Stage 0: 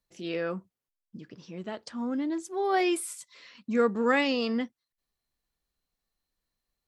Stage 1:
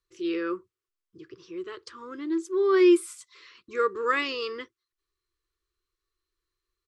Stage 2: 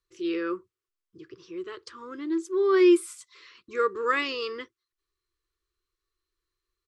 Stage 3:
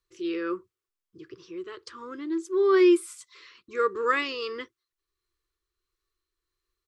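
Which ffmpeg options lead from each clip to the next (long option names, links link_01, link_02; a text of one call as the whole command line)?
ffmpeg -i in.wav -af "firequalizer=gain_entry='entry(110,0);entry(220,-25);entry(350,11);entry(700,-24);entry(1100,6);entry(1700,0);entry(3700,0);entry(7500,-2);entry(13000,-8)':delay=0.05:min_phase=1" out.wav
ffmpeg -i in.wav -af anull out.wav
ffmpeg -i in.wav -af "tremolo=f=1.5:d=0.3,volume=1.5dB" out.wav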